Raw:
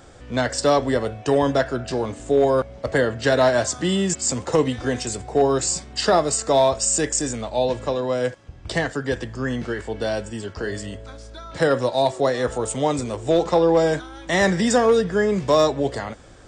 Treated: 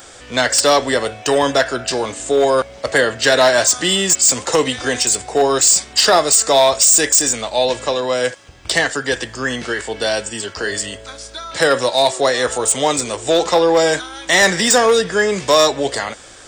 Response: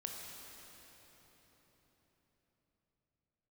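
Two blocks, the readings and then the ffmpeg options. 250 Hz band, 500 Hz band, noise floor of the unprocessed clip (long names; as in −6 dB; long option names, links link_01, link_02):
0.0 dB, +3.5 dB, −43 dBFS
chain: -af "crystalizer=i=7.5:c=0,acontrast=32,bass=frequency=250:gain=-8,treble=frequency=4000:gain=-6,volume=-1.5dB"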